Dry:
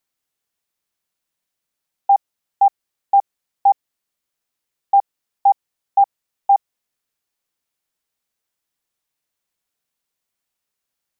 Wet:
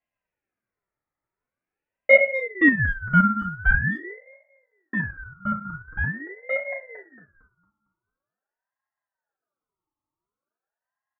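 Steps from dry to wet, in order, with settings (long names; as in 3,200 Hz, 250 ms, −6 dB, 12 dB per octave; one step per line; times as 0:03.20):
feedback delay that plays each chunk backwards 114 ms, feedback 59%, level −10 dB
asymmetric clip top −11 dBFS, bottom −9.5 dBFS
low-pass filter sweep 950 Hz → 470 Hz, 0:03.17–0:04.44
0:02.13–0:03.71: Butterworth band-reject 730 Hz, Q 5.9
phaser with its sweep stopped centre 620 Hz, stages 8
far-end echo of a speakerphone 250 ms, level −30 dB
feedback delay network reverb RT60 0.41 s, low-frequency decay 1.05×, high-frequency decay 0.5×, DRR −1 dB
ring modulator whose carrier an LFO sweeps 970 Hz, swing 40%, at 0.45 Hz
level +1.5 dB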